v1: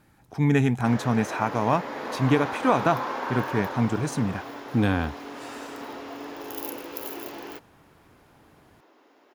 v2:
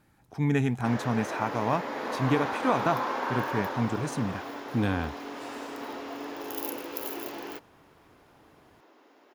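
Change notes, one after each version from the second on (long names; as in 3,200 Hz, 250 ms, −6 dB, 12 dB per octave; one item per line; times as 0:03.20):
speech −4.5 dB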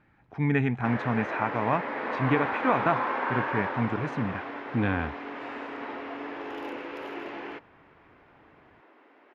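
master: add low-pass with resonance 2,200 Hz, resonance Q 1.7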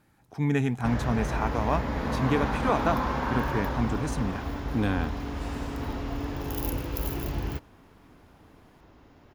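background: remove high-pass filter 310 Hz 24 dB per octave
master: remove low-pass with resonance 2,200 Hz, resonance Q 1.7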